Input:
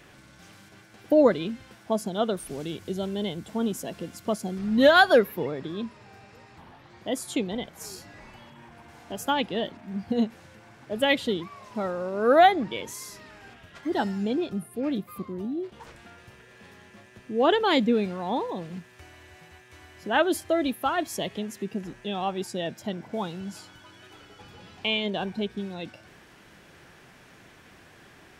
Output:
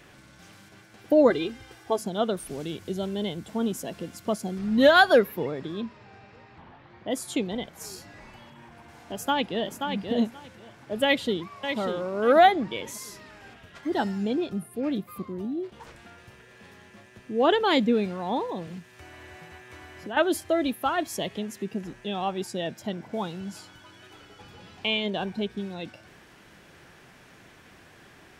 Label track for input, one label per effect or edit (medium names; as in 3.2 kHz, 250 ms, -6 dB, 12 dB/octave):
1.300000	1.990000	comb 2.5 ms, depth 83%
5.800000	7.090000	low-pass 5.3 kHz -> 2.8 kHz
9.130000	9.780000	echo throw 530 ms, feedback 15%, level -5.5 dB
11.040000	11.790000	echo throw 590 ms, feedback 30%, level -7.5 dB
18.670000	20.170000	three bands compressed up and down depth 70%